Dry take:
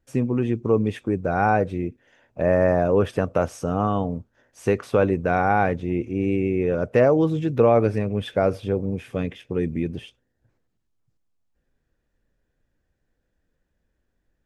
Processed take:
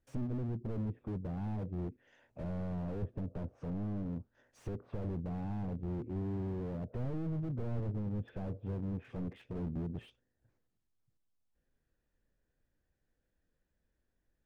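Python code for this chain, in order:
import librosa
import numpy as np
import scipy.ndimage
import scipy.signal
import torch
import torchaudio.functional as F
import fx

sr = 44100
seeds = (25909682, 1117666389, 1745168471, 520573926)

y = fx.env_lowpass_down(x, sr, base_hz=350.0, full_db=-20.0)
y = fx.slew_limit(y, sr, full_power_hz=9.7)
y = y * 10.0 ** (-8.0 / 20.0)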